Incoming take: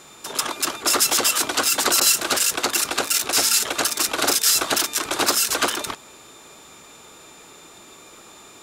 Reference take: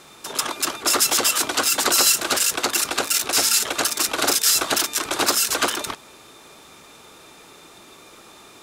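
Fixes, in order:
notch filter 7,100 Hz, Q 30
repair the gap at 0:02.00, 11 ms

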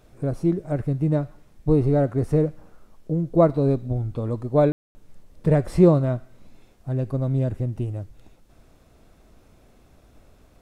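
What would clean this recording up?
ambience match 0:04.72–0:04.95

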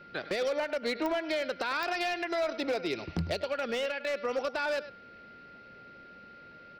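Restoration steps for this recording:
clipped peaks rebuilt −25 dBFS
click removal
notch filter 1,400 Hz, Q 30
echo removal 103 ms −15.5 dB

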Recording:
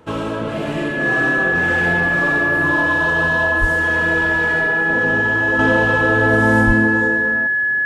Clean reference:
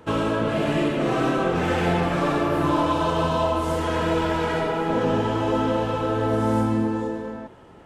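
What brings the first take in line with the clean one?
notch filter 1,700 Hz, Q 30
0:03.60–0:03.72: high-pass filter 140 Hz 24 dB per octave
0:06.66–0:06.78: high-pass filter 140 Hz 24 dB per octave
level 0 dB, from 0:05.59 −6 dB

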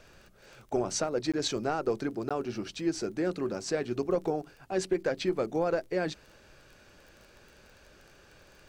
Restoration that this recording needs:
click removal
repair the gap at 0:01.32/0:02.29, 16 ms

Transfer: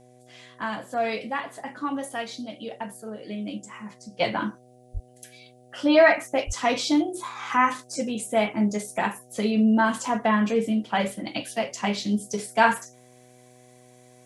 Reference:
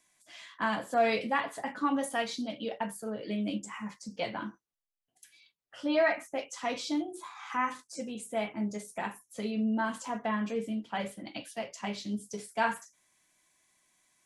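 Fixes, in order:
hum removal 124.4 Hz, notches 6
high-pass at the plosives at 0:04.93/0:06.46
downward expander −45 dBFS, range −21 dB
level correction −10 dB, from 0:04.20

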